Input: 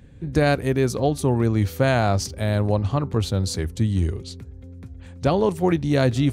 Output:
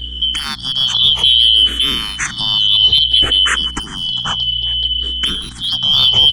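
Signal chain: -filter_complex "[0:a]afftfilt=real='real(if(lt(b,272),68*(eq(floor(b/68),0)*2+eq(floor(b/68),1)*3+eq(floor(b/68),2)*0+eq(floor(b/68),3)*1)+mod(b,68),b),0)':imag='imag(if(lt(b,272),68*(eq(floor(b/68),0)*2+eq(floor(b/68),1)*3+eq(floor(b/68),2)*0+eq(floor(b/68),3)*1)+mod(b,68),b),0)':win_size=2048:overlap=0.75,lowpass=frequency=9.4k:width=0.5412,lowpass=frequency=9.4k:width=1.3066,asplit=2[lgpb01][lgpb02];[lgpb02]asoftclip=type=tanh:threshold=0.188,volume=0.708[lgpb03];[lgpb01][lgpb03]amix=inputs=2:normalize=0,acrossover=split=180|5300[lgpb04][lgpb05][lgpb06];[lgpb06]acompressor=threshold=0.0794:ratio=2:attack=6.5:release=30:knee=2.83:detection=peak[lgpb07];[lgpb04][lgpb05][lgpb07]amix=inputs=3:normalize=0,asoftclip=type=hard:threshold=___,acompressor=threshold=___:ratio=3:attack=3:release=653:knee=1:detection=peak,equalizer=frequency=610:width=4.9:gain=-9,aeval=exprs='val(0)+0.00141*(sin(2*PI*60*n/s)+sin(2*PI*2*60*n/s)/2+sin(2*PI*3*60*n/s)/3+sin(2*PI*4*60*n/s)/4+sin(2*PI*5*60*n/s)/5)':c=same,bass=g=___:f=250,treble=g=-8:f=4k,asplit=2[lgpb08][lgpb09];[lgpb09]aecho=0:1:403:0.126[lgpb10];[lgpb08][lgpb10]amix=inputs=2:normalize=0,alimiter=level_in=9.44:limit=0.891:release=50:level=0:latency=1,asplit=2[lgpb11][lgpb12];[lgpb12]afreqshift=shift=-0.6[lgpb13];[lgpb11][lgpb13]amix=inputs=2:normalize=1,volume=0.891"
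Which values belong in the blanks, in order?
0.335, 0.0891, 12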